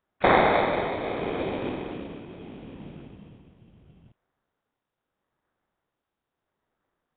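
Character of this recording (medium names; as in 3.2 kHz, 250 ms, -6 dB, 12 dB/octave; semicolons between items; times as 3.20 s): tremolo triangle 0.77 Hz, depth 55%; aliases and images of a low sample rate 2.9 kHz, jitter 0%; Nellymoser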